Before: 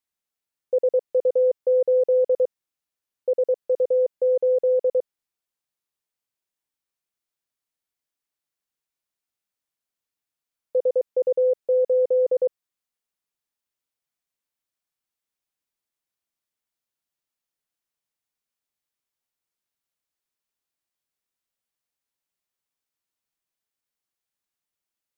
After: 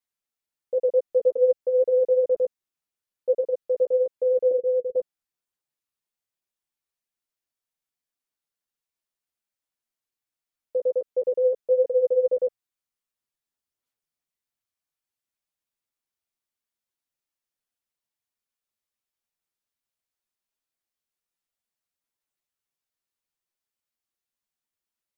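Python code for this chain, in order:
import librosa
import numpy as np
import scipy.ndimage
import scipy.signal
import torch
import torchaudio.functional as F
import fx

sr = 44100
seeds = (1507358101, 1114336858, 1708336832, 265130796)

y = fx.cheby_ripple(x, sr, hz=510.0, ripple_db=3, at=(4.51, 4.96))
y = fx.chorus_voices(y, sr, voices=6, hz=1.5, base_ms=11, depth_ms=3.0, mix_pct=40)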